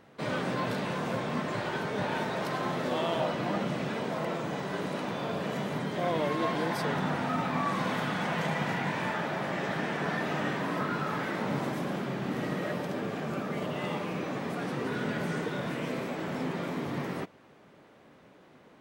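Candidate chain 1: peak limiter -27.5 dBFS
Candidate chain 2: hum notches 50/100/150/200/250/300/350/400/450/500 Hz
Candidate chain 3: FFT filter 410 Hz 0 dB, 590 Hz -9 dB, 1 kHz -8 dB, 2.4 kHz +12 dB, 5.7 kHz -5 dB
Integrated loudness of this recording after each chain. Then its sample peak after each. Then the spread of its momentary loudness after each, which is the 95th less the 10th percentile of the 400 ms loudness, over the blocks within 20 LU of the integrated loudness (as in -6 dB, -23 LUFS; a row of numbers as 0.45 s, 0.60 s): -36.0 LUFS, -32.5 LUFS, -30.5 LUFS; -27.5 dBFS, -16.0 dBFS, -16.0 dBFS; 1 LU, 5 LU, 5 LU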